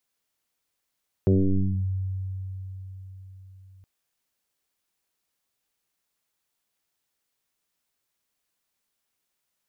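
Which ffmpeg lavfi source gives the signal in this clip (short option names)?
-f lavfi -i "aevalsrc='0.158*pow(10,-3*t/4.67)*sin(2*PI*94.8*t+3.7*clip(1-t/0.59,0,1)*sin(2*PI*1.01*94.8*t))':d=2.57:s=44100"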